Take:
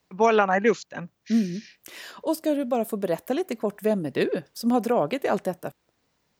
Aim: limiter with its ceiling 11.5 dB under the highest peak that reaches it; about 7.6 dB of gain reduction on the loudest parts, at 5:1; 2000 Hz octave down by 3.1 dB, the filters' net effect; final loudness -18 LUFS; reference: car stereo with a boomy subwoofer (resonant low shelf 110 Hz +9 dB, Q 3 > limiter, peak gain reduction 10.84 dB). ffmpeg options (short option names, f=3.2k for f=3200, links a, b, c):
-af "equalizer=f=2k:t=o:g=-4,acompressor=threshold=-24dB:ratio=5,alimiter=level_in=1.5dB:limit=-24dB:level=0:latency=1,volume=-1.5dB,lowshelf=f=110:t=q:w=3:g=9,volume=27.5dB,alimiter=limit=-9dB:level=0:latency=1"